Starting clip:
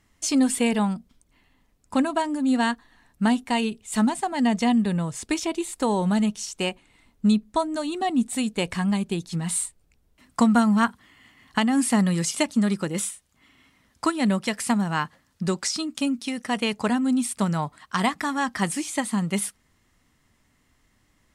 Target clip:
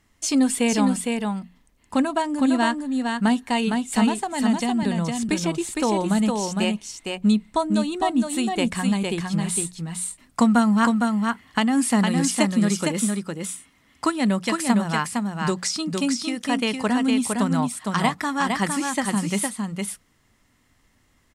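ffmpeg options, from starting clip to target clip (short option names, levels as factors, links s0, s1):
-filter_complex "[0:a]asettb=1/sr,asplit=3[s0][s1][s2];[s0]atrim=end=4.224[s3];[s1]atrim=start=4.22:end=4.83,asetpts=PTS-STARTPTS,afade=t=in:d=0.004:c=qsin,afade=t=out:st=0.606:d=0.004:c=qsin,acrossover=split=160|3000[s4][s5][s6];[s5]acompressor=threshold=0.0631:ratio=6[s7];[s4][s7][s6]amix=inputs=3:normalize=0[s8];[s2]atrim=start=4.826[s9];[s3][s8]acrossfade=d=0.004:c1=hsin:c2=qsin[s10];[s10][s9]acrossfade=d=0.004:c1=qsin:c2=hsin,bandreject=f=60:t=h:w=6,bandreject=f=120:t=h:w=6,bandreject=f=180:t=h:w=6,aecho=1:1:459:0.631,volume=1.12"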